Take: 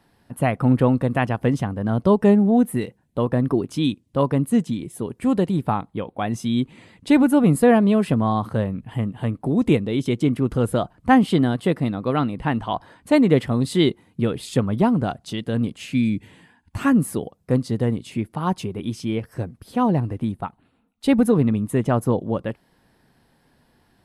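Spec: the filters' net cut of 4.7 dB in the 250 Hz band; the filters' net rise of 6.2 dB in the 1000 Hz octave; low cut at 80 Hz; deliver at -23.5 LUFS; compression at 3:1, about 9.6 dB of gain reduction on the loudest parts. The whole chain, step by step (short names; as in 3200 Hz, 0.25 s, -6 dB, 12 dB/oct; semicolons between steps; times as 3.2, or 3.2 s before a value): HPF 80 Hz; bell 250 Hz -6 dB; bell 1000 Hz +8.5 dB; compressor 3:1, threshold -20 dBFS; gain +3 dB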